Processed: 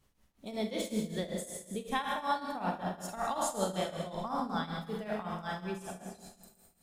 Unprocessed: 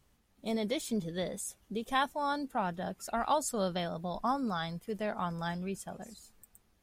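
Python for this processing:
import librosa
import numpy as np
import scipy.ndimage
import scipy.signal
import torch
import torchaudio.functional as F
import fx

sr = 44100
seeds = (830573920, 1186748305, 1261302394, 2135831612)

y = fx.rev_schroeder(x, sr, rt60_s=1.5, comb_ms=33, drr_db=0.0)
y = fx.tremolo_shape(y, sr, shape='triangle', hz=5.3, depth_pct=85)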